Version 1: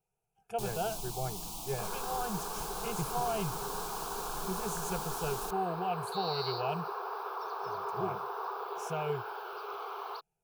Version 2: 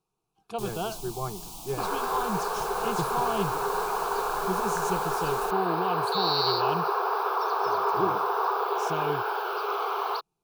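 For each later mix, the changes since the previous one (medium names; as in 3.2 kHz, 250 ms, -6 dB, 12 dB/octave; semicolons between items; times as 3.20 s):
speech: remove static phaser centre 1.1 kHz, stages 6; second sound +11.5 dB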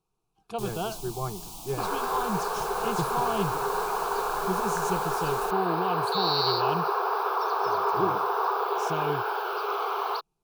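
speech: add bass shelf 63 Hz +10.5 dB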